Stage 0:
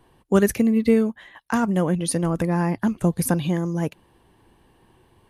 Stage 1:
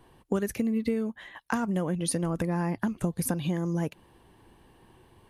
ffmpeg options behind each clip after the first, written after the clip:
-af "acompressor=threshold=-25dB:ratio=6"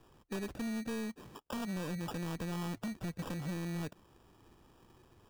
-af "highshelf=f=6.6k:g=-8,acrusher=samples=21:mix=1:aa=0.000001,asoftclip=type=tanh:threshold=-29dB,volume=-5dB"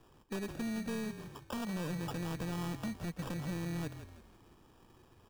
-filter_complex "[0:a]asplit=5[a][b][c][d][e];[b]adelay=165,afreqshift=-39,volume=-10.5dB[f];[c]adelay=330,afreqshift=-78,volume=-18dB[g];[d]adelay=495,afreqshift=-117,volume=-25.6dB[h];[e]adelay=660,afreqshift=-156,volume=-33.1dB[i];[a][f][g][h][i]amix=inputs=5:normalize=0"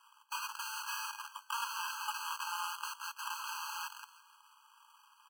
-filter_complex "[0:a]acrossover=split=630|2200[a][b][c];[a]acrusher=bits=6:mix=0:aa=0.000001[d];[c]asplit=2[e][f];[f]adelay=28,volume=-13dB[g];[e][g]amix=inputs=2:normalize=0[h];[d][b][h]amix=inputs=3:normalize=0,afftfilt=real='re*eq(mod(floor(b*sr/1024/820),2),1)':imag='im*eq(mod(floor(b*sr/1024/820),2),1)':win_size=1024:overlap=0.75,volume=8dB"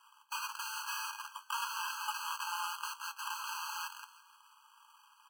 -af "flanger=delay=6.8:depth=4.5:regen=-71:speed=0.4:shape=sinusoidal,volume=5dB"

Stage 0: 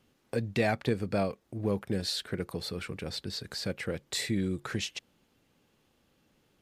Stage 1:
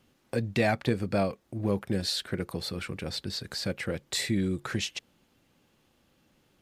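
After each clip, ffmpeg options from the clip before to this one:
-af "bandreject=f=440:w=12,volume=2.5dB"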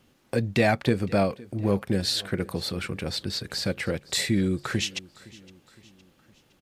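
-af "aecho=1:1:513|1026|1539:0.0794|0.0397|0.0199,volume=4dB"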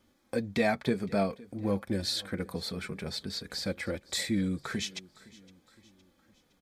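-af "flanger=delay=3.3:depth=1.6:regen=-33:speed=0.5:shape=triangular,asuperstop=centerf=2800:order=4:qfactor=7.8,volume=-2dB"

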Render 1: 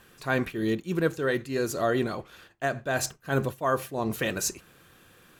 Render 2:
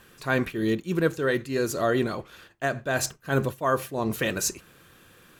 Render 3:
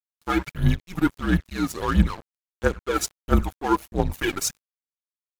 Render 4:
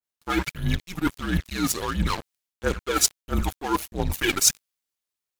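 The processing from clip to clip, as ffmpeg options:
-af "equalizer=f=750:w=5.6:g=-3,volume=2dB"
-af "aphaser=in_gain=1:out_gain=1:delay=2.2:decay=0.68:speed=1.5:type=triangular,afreqshift=-190,aeval=exprs='sgn(val(0))*max(abs(val(0))-0.0224,0)':c=same"
-af "areverse,acompressor=threshold=-28dB:ratio=6,areverse,adynamicequalizer=threshold=0.00398:dfrequency=1900:dqfactor=0.7:tfrequency=1900:tqfactor=0.7:attack=5:release=100:ratio=0.375:range=3.5:mode=boostabove:tftype=highshelf,volume=6.5dB"

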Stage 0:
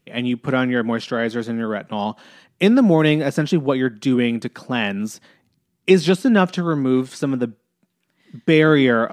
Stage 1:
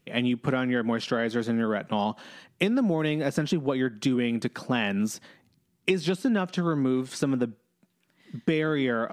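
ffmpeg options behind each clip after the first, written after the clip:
-af "acompressor=threshold=-21dB:ratio=12"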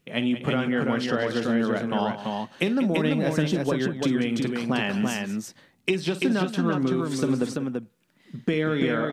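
-af "aecho=1:1:45|52|188|337:0.133|0.2|0.237|0.668"

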